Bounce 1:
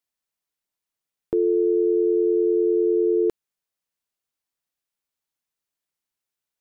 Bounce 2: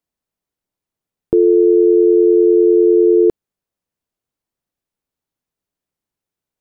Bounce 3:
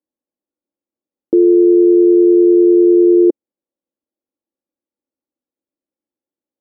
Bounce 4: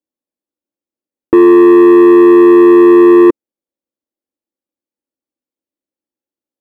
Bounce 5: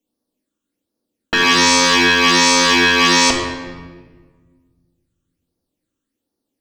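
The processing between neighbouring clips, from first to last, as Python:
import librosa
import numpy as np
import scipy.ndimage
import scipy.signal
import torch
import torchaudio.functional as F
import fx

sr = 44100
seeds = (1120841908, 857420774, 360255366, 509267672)

y1 = fx.tilt_shelf(x, sr, db=7.0, hz=820.0)
y1 = F.gain(torch.from_numpy(y1), 5.0).numpy()
y2 = fx.bandpass_q(y1, sr, hz=370.0, q=1.7)
y2 = y2 + 0.63 * np.pad(y2, (int(3.6 * sr / 1000.0), 0))[:len(y2)]
y2 = F.gain(torch.from_numpy(y2), 2.5).numpy()
y3 = fx.leveller(y2, sr, passes=2)
y3 = F.gain(torch.from_numpy(y3), 2.5).numpy()
y4 = fx.phaser_stages(y3, sr, stages=8, low_hz=610.0, high_hz=2700.0, hz=1.3, feedback_pct=25)
y4 = fx.fold_sine(y4, sr, drive_db=19, ceiling_db=0.0)
y4 = fx.room_shoebox(y4, sr, seeds[0], volume_m3=1400.0, walls='mixed', distance_m=1.7)
y4 = F.gain(torch.from_numpy(y4), -12.0).numpy()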